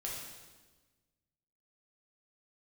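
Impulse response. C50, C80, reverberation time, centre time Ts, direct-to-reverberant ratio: 1.0 dB, 3.5 dB, 1.3 s, 70 ms, -4.0 dB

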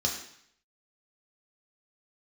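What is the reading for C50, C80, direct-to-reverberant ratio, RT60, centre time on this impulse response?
6.5 dB, 9.0 dB, -1.0 dB, 0.65 s, 28 ms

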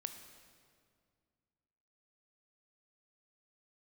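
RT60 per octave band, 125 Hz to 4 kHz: 2.7, 2.6, 2.2, 2.0, 1.7, 1.6 s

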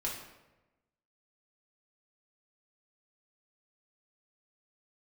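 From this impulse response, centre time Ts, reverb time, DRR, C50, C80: 42 ms, 1.1 s, -5.0 dB, 4.5 dB, 7.5 dB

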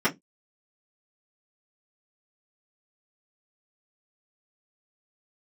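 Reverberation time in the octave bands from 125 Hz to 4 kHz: 0.25, 0.25, 0.20, 0.10, 0.10, 0.10 s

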